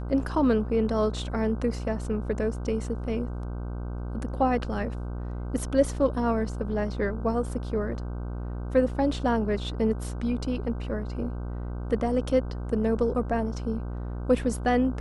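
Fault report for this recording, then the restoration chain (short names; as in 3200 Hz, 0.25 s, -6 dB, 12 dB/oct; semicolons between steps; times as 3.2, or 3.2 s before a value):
buzz 60 Hz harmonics 26 -33 dBFS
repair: de-hum 60 Hz, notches 26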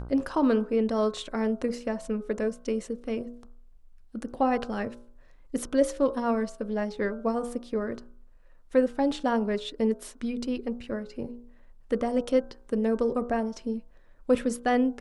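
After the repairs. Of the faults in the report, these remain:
none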